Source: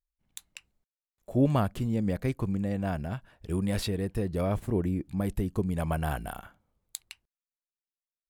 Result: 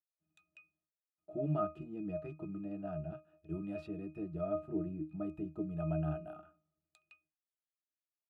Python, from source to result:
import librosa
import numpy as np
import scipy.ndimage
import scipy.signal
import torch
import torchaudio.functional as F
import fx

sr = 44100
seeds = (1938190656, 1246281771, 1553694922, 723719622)

y = scipy.signal.sosfilt(scipy.signal.butter(2, 230.0, 'highpass', fs=sr, output='sos'), x)
y = fx.octave_resonator(y, sr, note='D#', decay_s=0.23)
y = y * librosa.db_to_amplitude(7.5)